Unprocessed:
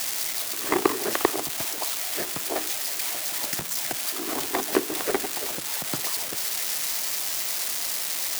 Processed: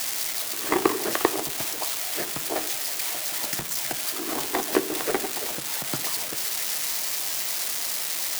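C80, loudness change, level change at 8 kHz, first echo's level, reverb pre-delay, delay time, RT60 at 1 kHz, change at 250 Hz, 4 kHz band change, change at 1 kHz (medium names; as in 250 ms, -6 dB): 20.0 dB, 0.0 dB, 0.0 dB, no echo, 6 ms, no echo, 0.75 s, +0.5 dB, 0.0 dB, +0.5 dB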